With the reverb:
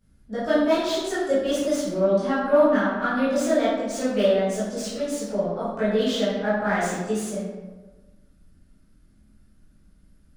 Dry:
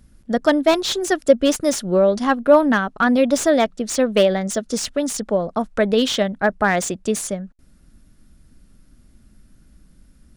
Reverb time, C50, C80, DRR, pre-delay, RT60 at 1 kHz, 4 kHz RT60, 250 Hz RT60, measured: 1.3 s, -1.0 dB, 2.0 dB, -12.0 dB, 13 ms, 1.2 s, 0.75 s, 1.4 s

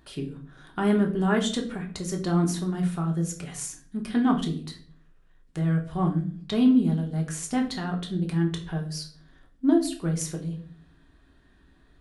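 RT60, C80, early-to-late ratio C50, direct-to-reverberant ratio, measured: 0.50 s, 15.0 dB, 10.0 dB, 1.5 dB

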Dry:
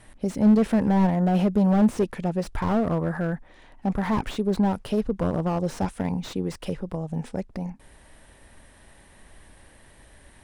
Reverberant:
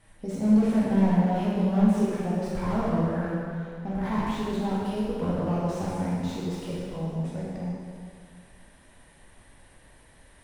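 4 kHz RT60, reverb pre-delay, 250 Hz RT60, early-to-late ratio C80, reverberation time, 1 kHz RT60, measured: 2.0 s, 6 ms, 2.1 s, -0.5 dB, 2.0 s, 2.0 s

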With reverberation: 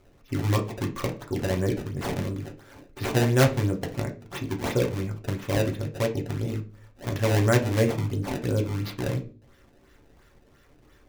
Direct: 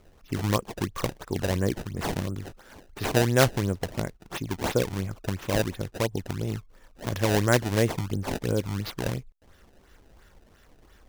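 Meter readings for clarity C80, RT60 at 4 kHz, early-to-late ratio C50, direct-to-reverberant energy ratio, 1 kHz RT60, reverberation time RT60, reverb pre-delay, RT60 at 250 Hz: 18.5 dB, 0.35 s, 13.0 dB, 1.0 dB, 0.35 s, 0.40 s, 3 ms, 0.55 s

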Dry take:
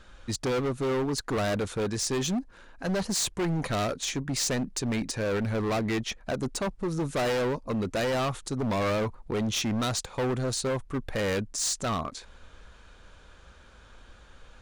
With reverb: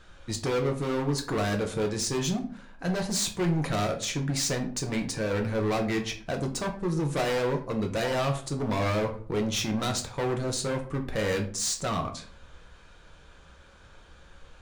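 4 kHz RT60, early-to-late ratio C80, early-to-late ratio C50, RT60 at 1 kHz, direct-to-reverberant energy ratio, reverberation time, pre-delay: 0.30 s, 15.5 dB, 11.0 dB, 0.45 s, 3.0 dB, 0.50 s, 3 ms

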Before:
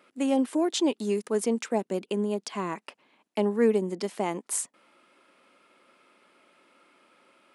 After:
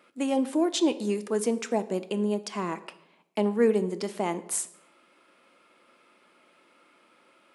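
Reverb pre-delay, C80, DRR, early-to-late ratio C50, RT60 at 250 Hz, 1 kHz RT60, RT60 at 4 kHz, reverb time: 6 ms, 18.0 dB, 11.0 dB, 16.0 dB, 0.80 s, 0.70 s, 0.60 s, 0.85 s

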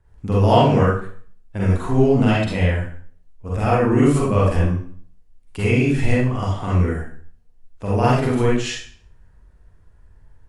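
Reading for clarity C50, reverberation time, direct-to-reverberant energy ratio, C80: -1.5 dB, 0.50 s, -7.5 dB, 5.0 dB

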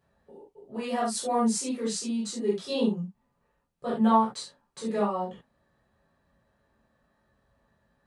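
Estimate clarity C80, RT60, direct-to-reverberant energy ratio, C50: 11.0 dB, no single decay rate, -9.5 dB, 3.5 dB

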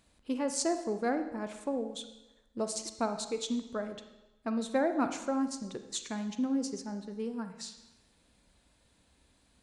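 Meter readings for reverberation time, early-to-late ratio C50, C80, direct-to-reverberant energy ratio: 1.0 s, 9.5 dB, 11.5 dB, 8.0 dB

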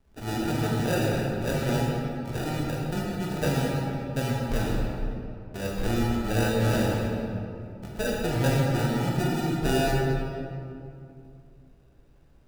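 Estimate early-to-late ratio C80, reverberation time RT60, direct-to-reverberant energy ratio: 0.0 dB, 2.5 s, -3.5 dB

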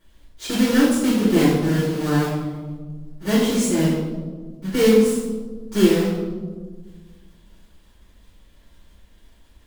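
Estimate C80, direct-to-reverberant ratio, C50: 3.0 dB, -10.5 dB, 0.5 dB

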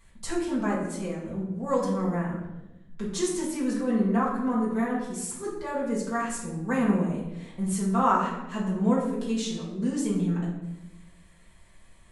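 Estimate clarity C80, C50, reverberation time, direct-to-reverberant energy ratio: 6.0 dB, 3.5 dB, 0.95 s, -6.5 dB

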